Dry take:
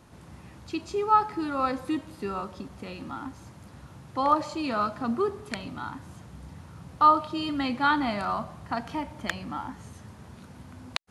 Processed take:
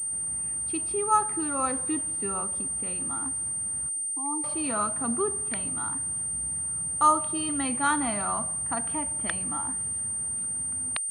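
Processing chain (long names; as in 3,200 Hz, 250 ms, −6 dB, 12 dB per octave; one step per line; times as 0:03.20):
0:03.89–0:04.44: formant filter u
switching amplifier with a slow clock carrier 8,800 Hz
level −2 dB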